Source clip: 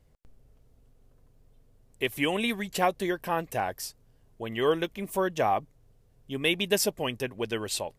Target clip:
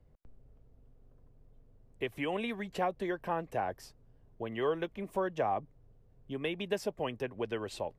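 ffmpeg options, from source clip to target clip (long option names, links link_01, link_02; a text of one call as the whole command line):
ffmpeg -i in.wav -filter_complex "[0:a]acrossover=split=210|430[link_01][link_02][link_03];[link_01]acompressor=threshold=-46dB:ratio=4[link_04];[link_02]acompressor=threshold=-42dB:ratio=4[link_05];[link_03]acompressor=threshold=-27dB:ratio=4[link_06];[link_04][link_05][link_06]amix=inputs=3:normalize=0,lowpass=frequency=1000:poles=1" out.wav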